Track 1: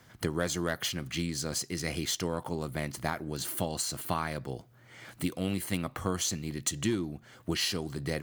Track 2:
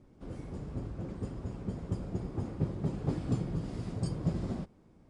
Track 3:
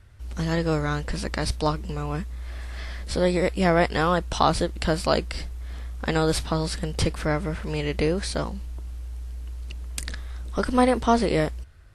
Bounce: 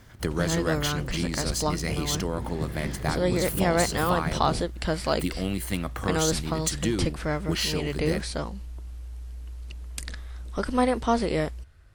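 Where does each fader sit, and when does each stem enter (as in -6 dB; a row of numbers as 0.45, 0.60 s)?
+2.5, -0.5, -3.5 dB; 0.00, 0.00, 0.00 s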